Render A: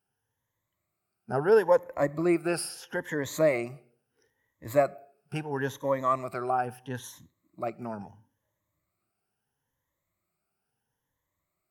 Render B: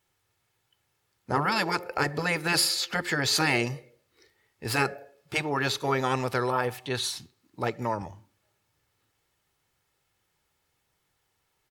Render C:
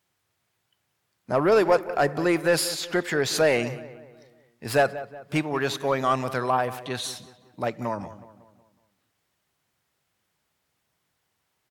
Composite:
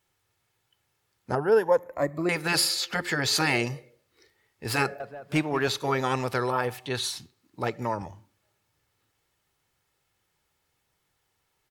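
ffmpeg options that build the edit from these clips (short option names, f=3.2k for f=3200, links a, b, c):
-filter_complex "[1:a]asplit=3[a][b][c];[a]atrim=end=1.352[d];[0:a]atrim=start=1.348:end=2.292[e];[b]atrim=start=2.288:end=5.002[f];[2:a]atrim=start=4.998:end=5.682[g];[c]atrim=start=5.678[h];[d][e]acrossfade=d=0.004:c1=hsin:c2=hsin[i];[i][f]acrossfade=d=0.004:c1=hsin:c2=hsin[j];[j][g]acrossfade=d=0.004:c1=hsin:c2=hsin[k];[k][h]acrossfade=d=0.004:c1=hsin:c2=hsin"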